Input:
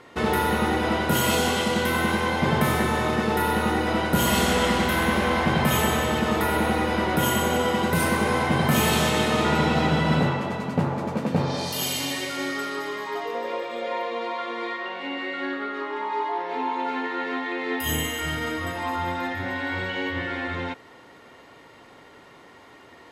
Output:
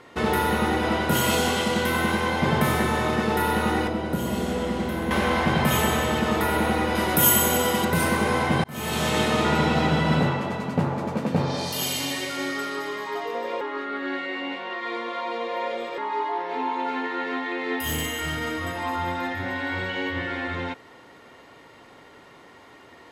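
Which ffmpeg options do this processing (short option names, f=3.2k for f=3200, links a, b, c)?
-filter_complex "[0:a]asettb=1/sr,asplit=3[a][b][c];[a]atrim=end=1.234[d];[b]atrim=start=1.23:end=2.36,asetpts=PTS-STARTPTS,afade=t=in:d=0.004:c=qsin,afade=t=out:st=1.126:d=0.004:c=qsin,aeval=exprs='sgn(val(0))*max(abs(val(0))-0.00168,0)':c=same[e];[c]atrim=start=2.356[f];[d][e]acrossfade=d=0.004:c1=hsin:c2=qsin[g];[g][f]acrossfade=d=0.004:c1=qsin:c2=hsin,asettb=1/sr,asplit=3[h][i][j];[h]atrim=end=3.874[k];[i]atrim=start=3.87:end=5.11,asetpts=PTS-STARTPTS,afade=t=in:d=0.004:c=qsin,afade=t=out:st=1.236:d=0.004:c=qsin,acrossover=split=140|640[l][m][n];[l]acompressor=threshold=-35dB:ratio=4[o];[m]acompressor=threshold=-24dB:ratio=4[p];[n]acompressor=threshold=-37dB:ratio=4[q];[o][p][q]amix=inputs=3:normalize=0[r];[j]atrim=start=5.106[s];[k][r]acrossfade=d=0.004:c1=hsin:c2=qsin[t];[t][s]acrossfade=d=0.004:c1=qsin:c2=hsin,asettb=1/sr,asplit=3[u][v][w];[u]atrim=end=6.954[x];[v]atrim=start=6.95:end=7.85,asetpts=PTS-STARTPTS,afade=t=in:d=0.004:c=qsin,afade=t=out:st=0.896:d=0.004:c=qsin,aemphasis=mode=production:type=50fm[y];[w]atrim=start=7.846[z];[x][y]acrossfade=d=0.004:c1=hsin:c2=qsin[aa];[aa][z]acrossfade=d=0.004:c1=qsin:c2=hsin,asettb=1/sr,asplit=3[ab][ac][ad];[ab]atrim=end=17.794[ae];[ac]atrim=start=17.79:end=18.7,asetpts=PTS-STARTPTS,afade=t=in:d=0.004:c=qsin,afade=t=out:st=0.906:d=0.004:c=qsin,asoftclip=type=hard:threshold=-23dB[af];[ad]atrim=start=18.696[ag];[ae][af]acrossfade=d=0.004:c1=hsin:c2=qsin[ah];[ah][ag]acrossfade=d=0.004:c1=qsin:c2=hsin,asplit=4[ai][aj][ak][al];[ai]atrim=end=8.64,asetpts=PTS-STARTPTS,afade=t=out:st=8.636:d=0.004:c=hsin[am];[aj]atrim=start=8.64:end=13.612,asetpts=PTS-STARTPTS,afade=t=in:d=0.54[an];[ak]atrim=start=13.608:end=15.982,asetpts=PTS-STARTPTS,areverse[ao];[al]atrim=start=15.978[ap];[am][an]concat=n=2:v=0:a=1[aq];[aq][ao]acrossfade=d=0.004:c1=hsin:c2=hsin[ar];[ar][ap]acrossfade=d=0.004:c1=hsin:c2=hsin"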